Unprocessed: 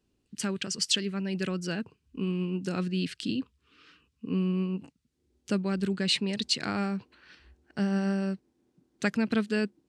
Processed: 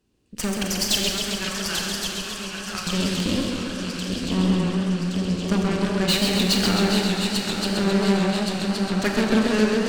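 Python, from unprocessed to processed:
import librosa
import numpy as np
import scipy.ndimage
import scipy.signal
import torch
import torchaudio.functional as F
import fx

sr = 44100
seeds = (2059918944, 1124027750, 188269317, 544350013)

p1 = fx.cheby2_highpass(x, sr, hz=250.0, order=4, stop_db=60, at=(1.09, 2.87))
p2 = fx.echo_swing(p1, sr, ms=1120, ratio=3, feedback_pct=61, wet_db=-8.0)
p3 = 10.0 ** (-24.0 / 20.0) * np.tanh(p2 / 10.0 ** (-24.0 / 20.0))
p4 = p2 + F.gain(torch.from_numpy(p3), -4.0).numpy()
p5 = fx.cheby_harmonics(p4, sr, harmonics=(8,), levels_db=(-16,), full_scale_db=-11.0)
p6 = fx.rev_schroeder(p5, sr, rt60_s=1.3, comb_ms=29, drr_db=3.5)
y = fx.echo_warbled(p6, sr, ms=133, feedback_pct=74, rate_hz=2.8, cents=141, wet_db=-5.0)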